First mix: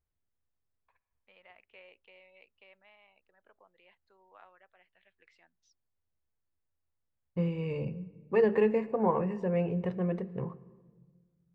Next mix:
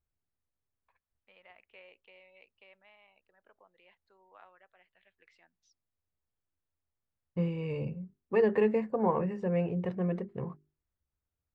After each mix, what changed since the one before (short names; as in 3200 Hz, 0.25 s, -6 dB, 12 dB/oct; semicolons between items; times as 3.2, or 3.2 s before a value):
reverb: off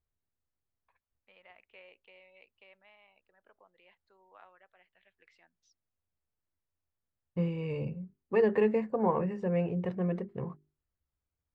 none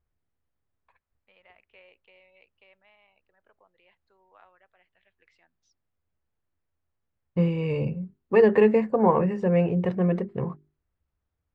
second voice +8.0 dB